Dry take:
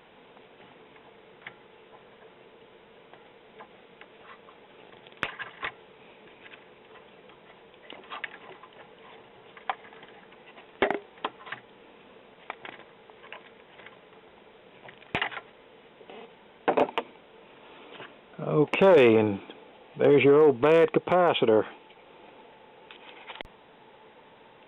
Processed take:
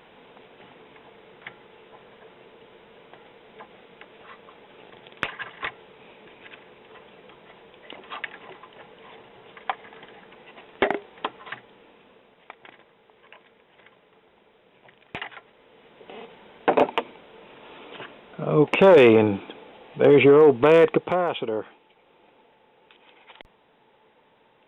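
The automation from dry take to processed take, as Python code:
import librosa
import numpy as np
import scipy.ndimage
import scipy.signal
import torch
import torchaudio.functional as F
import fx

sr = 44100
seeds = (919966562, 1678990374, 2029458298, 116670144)

y = fx.gain(x, sr, db=fx.line((11.39, 3.0), (12.53, -5.5), (15.34, -5.5), (16.2, 4.5), (20.86, 4.5), (21.47, -6.5)))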